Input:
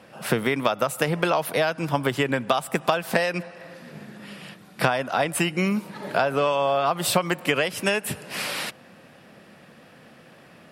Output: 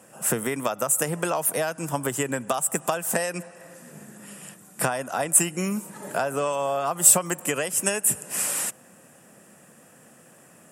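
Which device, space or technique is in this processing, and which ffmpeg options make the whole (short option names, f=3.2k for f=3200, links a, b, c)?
budget condenser microphone: -af "highpass=95,highshelf=f=5.7k:t=q:w=3:g=11.5,bandreject=f=2.2k:w=13,volume=-3.5dB"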